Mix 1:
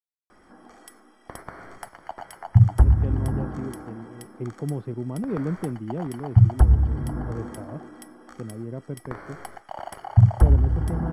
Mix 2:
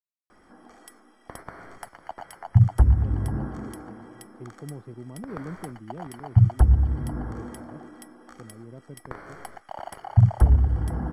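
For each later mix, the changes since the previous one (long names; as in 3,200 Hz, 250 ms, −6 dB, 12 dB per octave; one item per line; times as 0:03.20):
speech −9.5 dB
background: send −8.5 dB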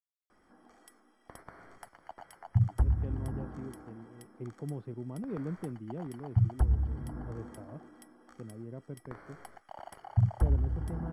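background −9.5 dB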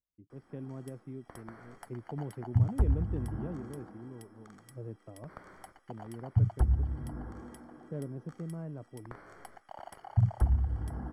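speech: entry −2.50 s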